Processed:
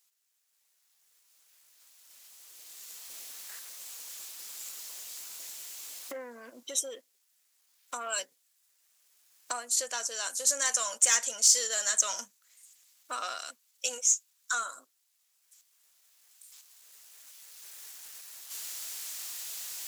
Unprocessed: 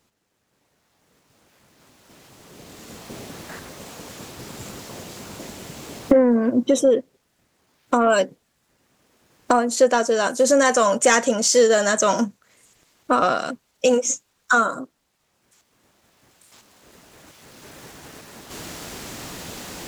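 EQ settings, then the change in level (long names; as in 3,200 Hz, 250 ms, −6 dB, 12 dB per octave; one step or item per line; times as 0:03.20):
first difference
low-shelf EQ 340 Hz −9.5 dB
0.0 dB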